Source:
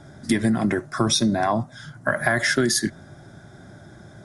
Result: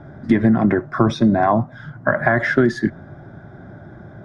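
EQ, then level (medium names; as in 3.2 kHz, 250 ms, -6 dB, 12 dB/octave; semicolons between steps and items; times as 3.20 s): low-pass 1.6 kHz 12 dB/octave; +6.0 dB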